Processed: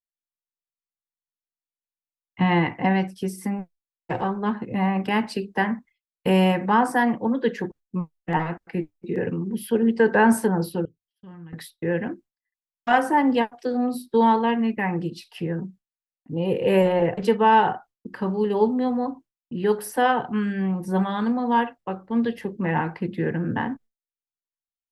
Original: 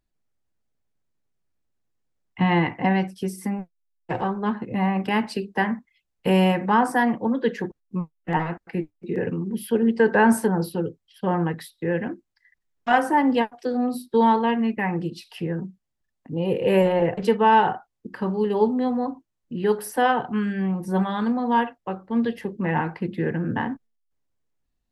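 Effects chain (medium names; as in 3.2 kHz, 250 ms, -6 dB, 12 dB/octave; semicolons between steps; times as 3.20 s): expander -42 dBFS; 10.85–11.53 s: amplifier tone stack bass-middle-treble 6-0-2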